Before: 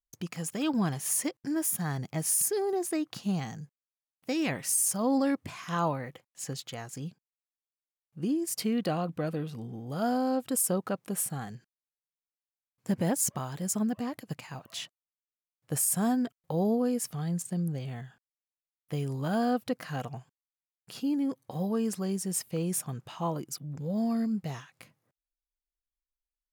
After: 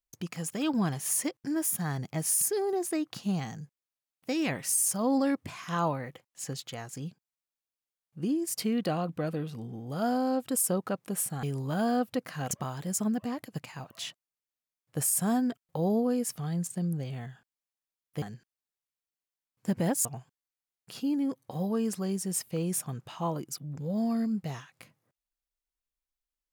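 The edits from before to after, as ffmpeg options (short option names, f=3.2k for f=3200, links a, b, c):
-filter_complex "[0:a]asplit=5[a][b][c][d][e];[a]atrim=end=11.432[f];[b]atrim=start=18.968:end=20.052[g];[c]atrim=start=13.258:end=18.972[h];[d]atrim=start=11.428:end=13.262[i];[e]atrim=start=20.048[j];[f][g]acrossfade=d=0.004:c1=hsin:c2=hsin[k];[k][h]acrossfade=d=0.004:c1=hsin:c2=hsin[l];[l][i]acrossfade=d=0.004:c1=hsin:c2=hsin[m];[m][j]acrossfade=d=0.004:c1=hsin:c2=hsin"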